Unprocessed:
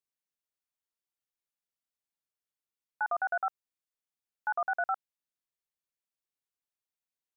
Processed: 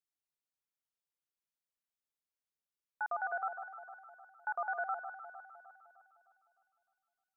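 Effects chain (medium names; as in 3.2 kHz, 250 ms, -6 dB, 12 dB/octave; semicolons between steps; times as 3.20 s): echo whose repeats swap between lows and highs 153 ms, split 1.2 kHz, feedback 69%, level -7 dB; trim -5.5 dB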